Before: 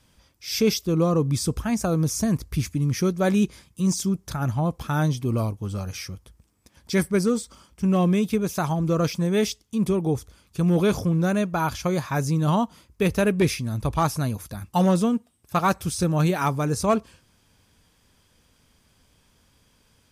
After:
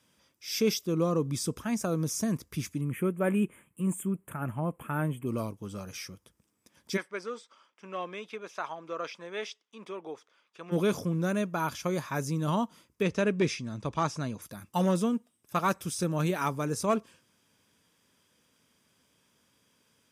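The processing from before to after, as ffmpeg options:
-filter_complex "[0:a]asettb=1/sr,asplit=3[s0][s1][s2];[s0]atrim=end=2.814[s3];[s1]atrim=start=2.81:end=5.27,asetpts=PTS-STARTPTS,afade=t=in:d=0.004:c=qsin,afade=t=out:st=2.456:d=0.004:c=qsin,asuperstop=centerf=4900:order=8:qfactor=1[s4];[s2]atrim=start=5.266[s5];[s3][s4]acrossfade=d=0.004:c1=hsin:c2=qsin[s6];[s6][s5]acrossfade=d=0.004:c1=qsin:c2=hsin,asplit=3[s7][s8][s9];[s7]afade=t=out:st=6.96:d=0.02[s10];[s8]highpass=680,lowpass=3300,afade=t=in:st=6.96:d=0.02,afade=t=out:st=10.71:d=0.02[s11];[s9]afade=t=in:st=10.71:d=0.02[s12];[s10][s11][s12]amix=inputs=3:normalize=0,asettb=1/sr,asplit=3[s13][s14][s15];[s13]atrim=end=13.024[s16];[s14]atrim=start=13.02:end=14.42,asetpts=PTS-STARTPTS,afade=t=in:d=0.004:c=qsin,afade=t=out:st=1.396:d=0.004:c=qsin,lowpass=f=7400:w=0.5412,lowpass=f=7400:w=1.3066[s17];[s15]atrim=start=14.416[s18];[s16][s17]acrossfade=d=0.004:c1=hsin:c2=qsin[s19];[s19][s18]acrossfade=d=0.004:c1=qsin:c2=hsin,highpass=170,equalizer=f=770:t=o:w=0.25:g=-5.5,bandreject=f=4300:w=9.3,volume=0.562"

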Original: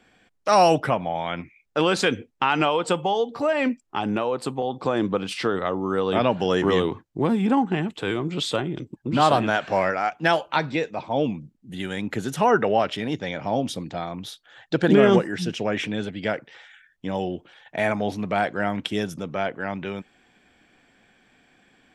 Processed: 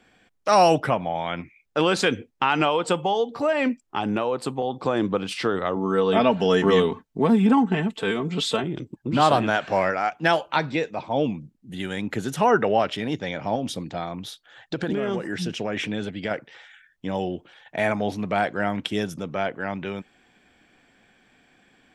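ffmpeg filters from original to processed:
-filter_complex "[0:a]asettb=1/sr,asplit=3[s0][s1][s2];[s0]atrim=end=5.764[s3];[s1]atrim=start=5.76:end=8.64,asetpts=PTS-STARTPTS,afade=t=in:d=0.004:c=qsin,afade=t=out:st=2.876:d=0.004:c=qsin,aecho=1:1:4.5:0.65,atrim=end_sample=127008[s4];[s2]atrim=start=8.636[s5];[s3][s4]acrossfade=d=0.004:c1=hsin:c2=qsin[s6];[s6][s5]acrossfade=d=0.004:c1=qsin:c2=hsin,asettb=1/sr,asplit=3[s7][s8][s9];[s7]atrim=end=13.554[s10];[s8]atrim=start=13.55:end=16.31,asetpts=PTS-STARTPTS,afade=t=in:d=0.004:c=qsin,afade=t=out:st=2.756:d=0.004:c=qsin,acompressor=threshold=0.0794:ratio=6:attack=3.2:release=140:knee=1:detection=peak[s11];[s9]atrim=start=16.306[s12];[s10][s11]acrossfade=d=0.004:c1=hsin:c2=qsin[s13];[s13][s12]acrossfade=d=0.004:c1=qsin:c2=hsin"

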